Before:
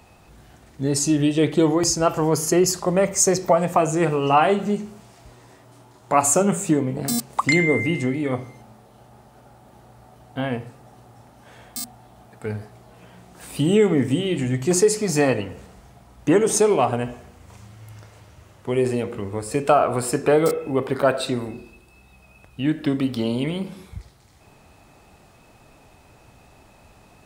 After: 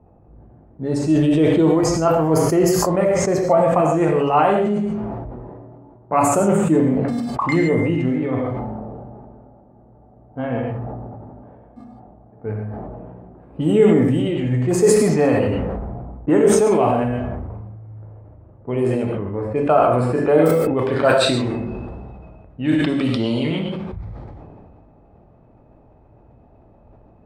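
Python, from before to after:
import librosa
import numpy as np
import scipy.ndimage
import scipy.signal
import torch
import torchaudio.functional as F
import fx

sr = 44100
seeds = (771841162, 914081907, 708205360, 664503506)

y = fx.peak_eq(x, sr, hz=5700.0, db=fx.steps((0.0, -12.0), (20.79, 2.0)), octaves=2.5)
y = fx.env_lowpass(y, sr, base_hz=590.0, full_db=-15.5)
y = fx.rev_gated(y, sr, seeds[0], gate_ms=170, shape='flat', drr_db=1.5)
y = fx.sustainer(y, sr, db_per_s=23.0)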